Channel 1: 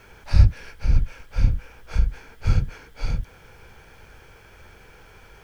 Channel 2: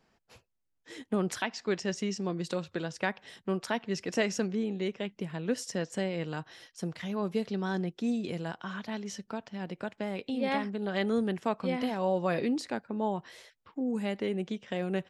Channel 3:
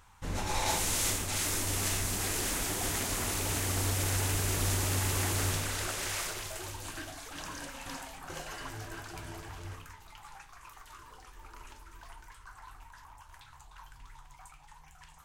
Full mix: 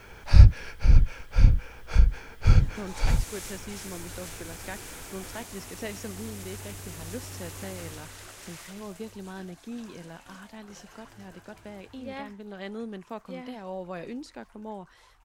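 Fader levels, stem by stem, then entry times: +1.5 dB, -8.0 dB, -10.5 dB; 0.00 s, 1.65 s, 2.40 s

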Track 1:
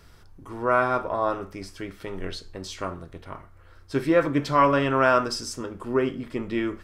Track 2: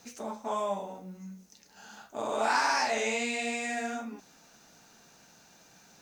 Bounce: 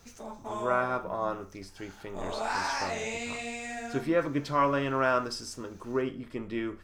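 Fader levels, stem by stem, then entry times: -6.5 dB, -4.5 dB; 0.00 s, 0.00 s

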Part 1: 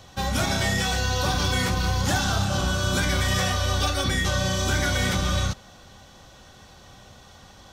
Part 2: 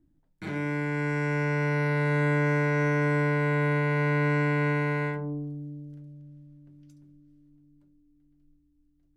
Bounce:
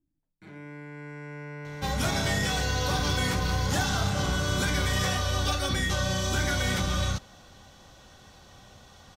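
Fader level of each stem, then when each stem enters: -3.5 dB, -13.0 dB; 1.65 s, 0.00 s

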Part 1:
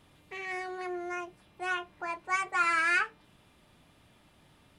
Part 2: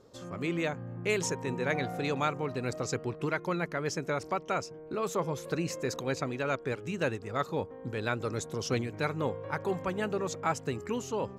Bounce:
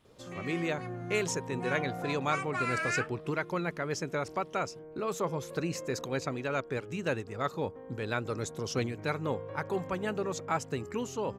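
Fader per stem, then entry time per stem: -6.0 dB, -1.0 dB; 0.00 s, 0.05 s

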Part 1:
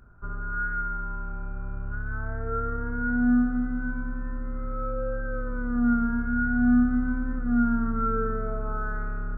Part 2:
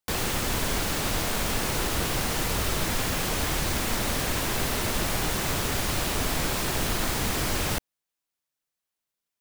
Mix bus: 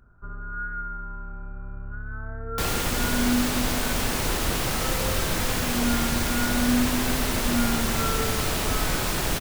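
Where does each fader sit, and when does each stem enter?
-3.0 dB, +1.0 dB; 0.00 s, 2.50 s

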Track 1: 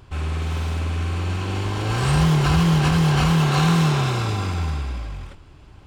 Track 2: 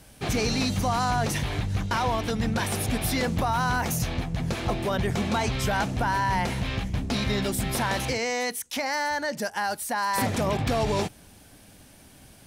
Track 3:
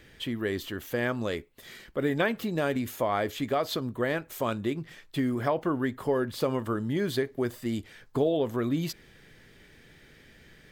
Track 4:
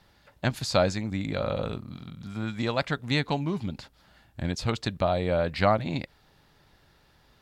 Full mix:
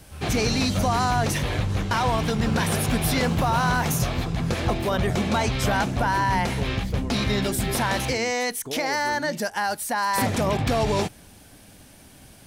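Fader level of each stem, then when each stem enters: -12.5 dB, +2.5 dB, -9.0 dB, -11.5 dB; 0.00 s, 0.00 s, 0.50 s, 0.00 s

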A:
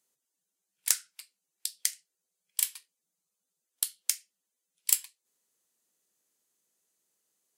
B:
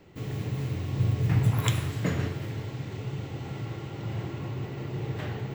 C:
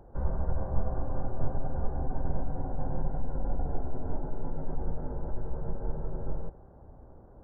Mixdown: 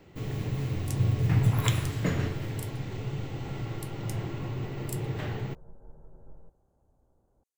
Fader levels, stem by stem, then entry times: -17.5 dB, 0.0 dB, -17.5 dB; 0.00 s, 0.00 s, 0.00 s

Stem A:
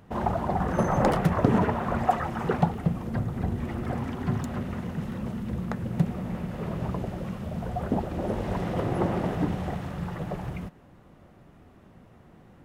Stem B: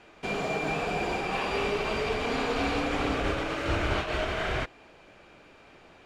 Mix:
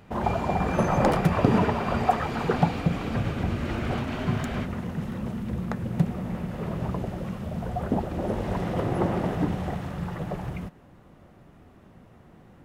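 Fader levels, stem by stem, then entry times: +1.0 dB, -7.0 dB; 0.00 s, 0.00 s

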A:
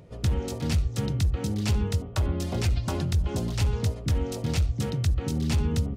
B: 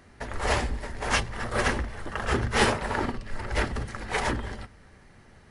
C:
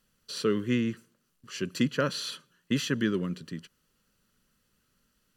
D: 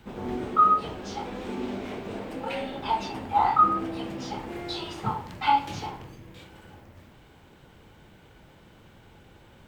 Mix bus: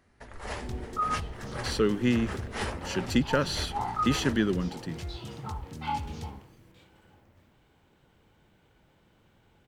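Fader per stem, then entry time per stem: -14.0 dB, -11.5 dB, +1.5 dB, -10.5 dB; 0.45 s, 0.00 s, 1.35 s, 0.40 s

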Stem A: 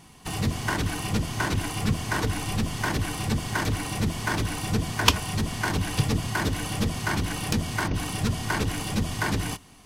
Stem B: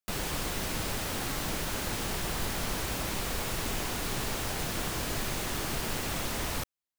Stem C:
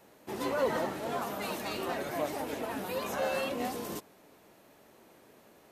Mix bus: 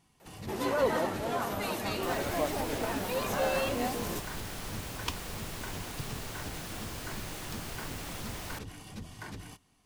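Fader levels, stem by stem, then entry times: -17.0 dB, -8.0 dB, +2.0 dB; 0.00 s, 1.95 s, 0.20 s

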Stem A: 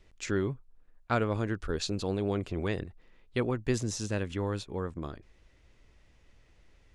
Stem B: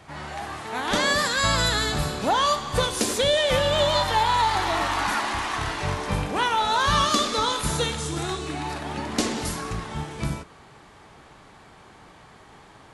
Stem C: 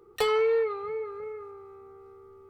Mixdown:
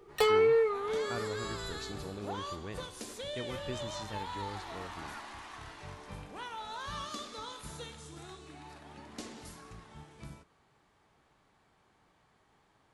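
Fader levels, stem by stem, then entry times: -11.5 dB, -19.5 dB, -0.5 dB; 0.00 s, 0.00 s, 0.00 s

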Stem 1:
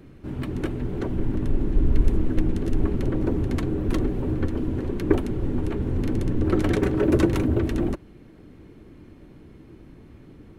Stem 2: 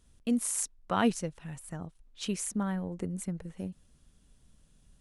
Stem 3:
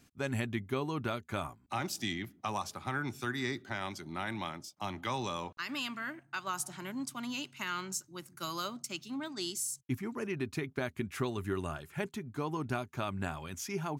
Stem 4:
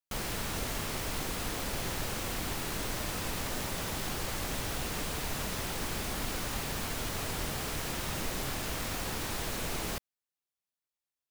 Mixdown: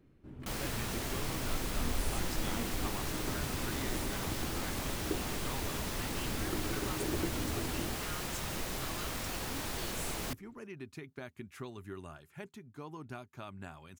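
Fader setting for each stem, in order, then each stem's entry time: -17.0 dB, -16.5 dB, -10.0 dB, -3.0 dB; 0.00 s, 1.55 s, 0.40 s, 0.35 s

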